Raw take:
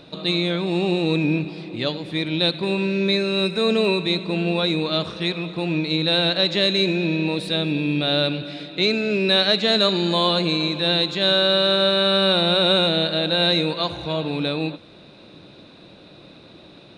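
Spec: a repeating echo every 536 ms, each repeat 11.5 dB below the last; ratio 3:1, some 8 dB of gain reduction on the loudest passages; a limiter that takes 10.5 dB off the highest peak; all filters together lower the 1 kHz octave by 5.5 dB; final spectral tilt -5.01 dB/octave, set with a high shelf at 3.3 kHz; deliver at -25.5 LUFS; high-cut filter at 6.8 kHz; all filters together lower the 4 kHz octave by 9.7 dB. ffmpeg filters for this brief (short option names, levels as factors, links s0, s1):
-af "lowpass=6800,equalizer=f=1000:t=o:g=-7,highshelf=f=3300:g=-4.5,equalizer=f=4000:t=o:g=-7,acompressor=threshold=0.0398:ratio=3,alimiter=level_in=1.58:limit=0.0631:level=0:latency=1,volume=0.631,aecho=1:1:536|1072|1608:0.266|0.0718|0.0194,volume=3.35"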